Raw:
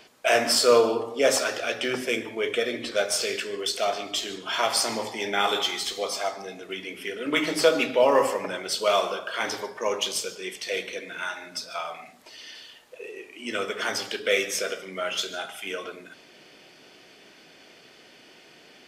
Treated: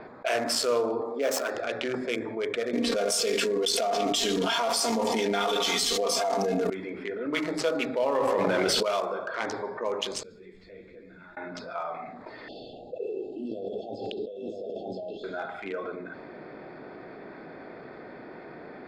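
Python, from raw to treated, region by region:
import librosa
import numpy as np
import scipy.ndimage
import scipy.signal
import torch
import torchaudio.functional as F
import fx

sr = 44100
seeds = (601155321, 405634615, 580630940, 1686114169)

y = fx.chain(x, sr, fx.highpass(hz=170.0, slope=24),
    fx.resample_bad(factor=2, down='none', up='hold'), at=(1.01, 1.55))
y = fx.chain(y, sr, fx.peak_eq(hz=1900.0, db=-7.0, octaves=1.3),
    fx.comb(ms=4.3, depth=0.75),
    fx.env_flatten(amount_pct=100), at=(2.73, 6.7))
y = fx.chain(y, sr, fx.peak_eq(hz=9100.0, db=-11.5, octaves=2.8),
    fx.env_flatten(amount_pct=100), at=(8.17, 8.83))
y = fx.chain(y, sr, fx.crossing_spikes(level_db=-30.0),
    fx.tone_stack(knobs='10-0-1'),
    fx.ensemble(), at=(10.23, 11.37))
y = fx.chain(y, sr, fx.echo_single(ms=972, db=-3.0),
    fx.over_compress(threshold_db=-36.0, ratio=-1.0),
    fx.brickwall_bandstop(low_hz=830.0, high_hz=2600.0), at=(12.48, 15.24))
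y = fx.wiener(y, sr, points=15)
y = fx.env_lowpass(y, sr, base_hz=2500.0, full_db=-22.5)
y = fx.env_flatten(y, sr, amount_pct=50)
y = F.gain(torch.from_numpy(y), -8.5).numpy()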